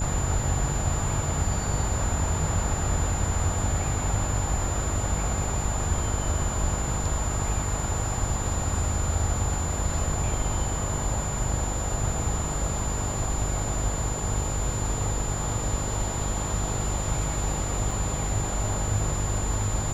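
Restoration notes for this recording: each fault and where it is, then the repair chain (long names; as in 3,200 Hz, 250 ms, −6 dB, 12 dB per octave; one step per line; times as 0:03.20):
mains buzz 50 Hz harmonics 13 −31 dBFS
whistle 7,100 Hz −33 dBFS
0:17.91: drop-out 3.3 ms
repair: notch filter 7,100 Hz, Q 30
hum removal 50 Hz, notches 13
repair the gap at 0:17.91, 3.3 ms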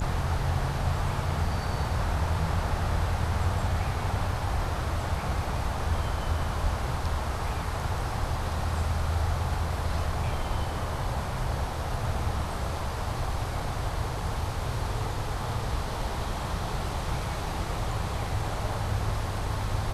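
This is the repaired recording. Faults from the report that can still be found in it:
none of them is left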